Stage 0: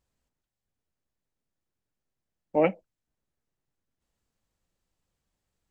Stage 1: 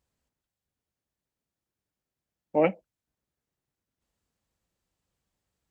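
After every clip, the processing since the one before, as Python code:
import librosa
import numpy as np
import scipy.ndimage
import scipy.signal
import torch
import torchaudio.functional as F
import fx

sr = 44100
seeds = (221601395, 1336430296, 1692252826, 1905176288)

y = scipy.signal.sosfilt(scipy.signal.butter(2, 41.0, 'highpass', fs=sr, output='sos'), x)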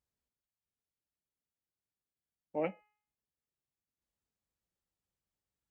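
y = fx.comb_fb(x, sr, f0_hz=420.0, decay_s=0.55, harmonics='all', damping=0.0, mix_pct=60)
y = y * librosa.db_to_amplitude(-4.0)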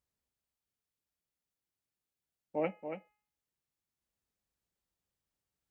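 y = x + 10.0 ** (-8.0 / 20.0) * np.pad(x, (int(281 * sr / 1000.0), 0))[:len(x)]
y = y * librosa.db_to_amplitude(1.0)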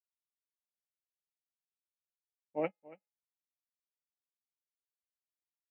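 y = fx.upward_expand(x, sr, threshold_db=-53.0, expansion=2.5)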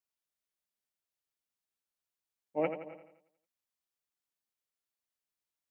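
y = fx.echo_feedback(x, sr, ms=85, feedback_pct=50, wet_db=-9.0)
y = y * librosa.db_to_amplitude(2.5)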